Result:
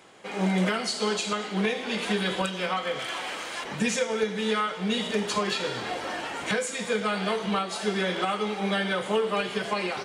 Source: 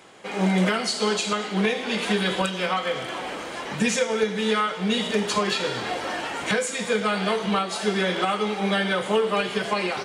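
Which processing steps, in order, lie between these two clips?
2.99–3.64 s: tilt shelf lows -6.5 dB, about 800 Hz; trim -3.5 dB

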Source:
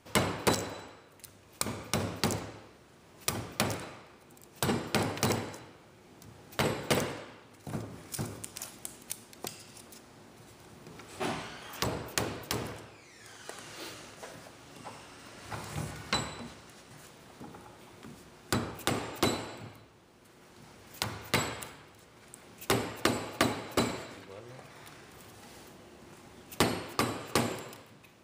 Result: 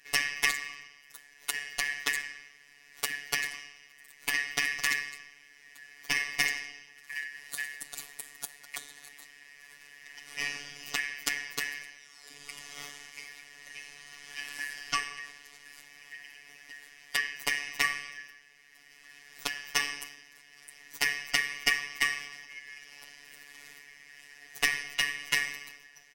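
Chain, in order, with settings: four frequency bands reordered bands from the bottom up 3142; comb 4.6 ms, depth 88%; robot voice 133 Hz; tape speed +8%

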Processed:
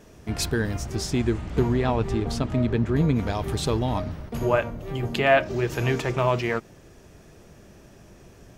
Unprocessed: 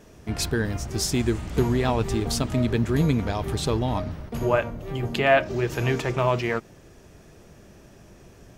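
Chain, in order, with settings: 0.94–3.15 s: low-pass 3.5 kHz -> 1.9 kHz 6 dB/octave

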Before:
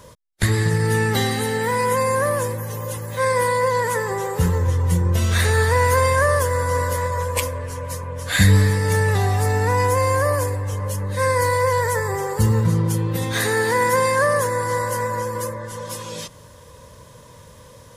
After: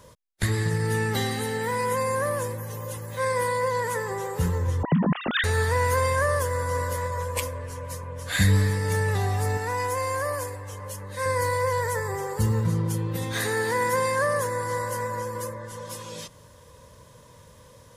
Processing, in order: 4.83–5.44 s: formants replaced by sine waves; 9.57–11.26 s: bass shelf 380 Hz -8.5 dB; trim -6 dB

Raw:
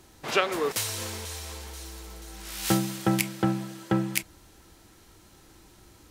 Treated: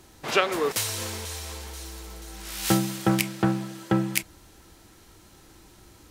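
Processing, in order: 3.09–3.74 s: loudspeaker Doppler distortion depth 0.23 ms; trim +2 dB

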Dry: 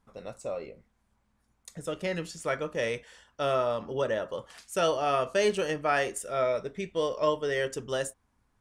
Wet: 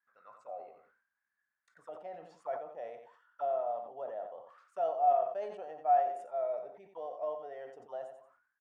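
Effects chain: auto-wah 720–1700 Hz, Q 17, down, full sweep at -30.5 dBFS; feedback delay 90 ms, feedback 21%, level -11 dB; decay stretcher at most 86 dB/s; trim +6 dB

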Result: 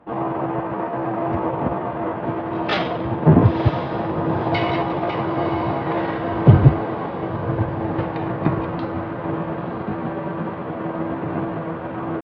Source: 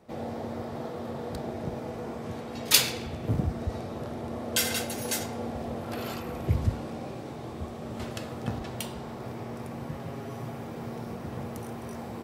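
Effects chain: dynamic bell 140 Hz, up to -4 dB, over -47 dBFS, Q 3.8; pitch shift +6 st; Gaussian low-pass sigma 3.6 samples; sine folder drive 15 dB, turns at -2 dBFS; echo that smears into a reverb 986 ms, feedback 54%, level -9 dB; upward expansion 1.5:1, over -29 dBFS

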